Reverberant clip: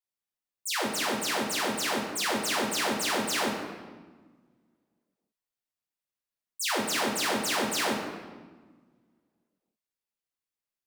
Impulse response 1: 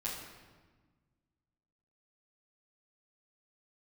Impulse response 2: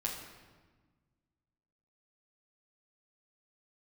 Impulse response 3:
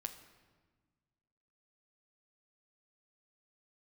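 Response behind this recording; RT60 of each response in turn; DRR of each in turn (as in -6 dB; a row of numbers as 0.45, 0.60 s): 2; 1.4, 1.4, 1.4 s; -9.0, -3.0, 6.0 dB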